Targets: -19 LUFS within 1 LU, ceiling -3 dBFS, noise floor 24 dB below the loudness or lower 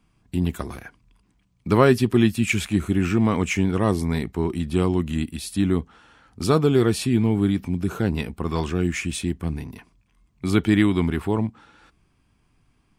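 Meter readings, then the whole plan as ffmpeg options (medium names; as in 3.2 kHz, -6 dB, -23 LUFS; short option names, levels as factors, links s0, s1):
loudness -22.5 LUFS; peak level -4.5 dBFS; loudness target -19.0 LUFS
-> -af "volume=1.5,alimiter=limit=0.708:level=0:latency=1"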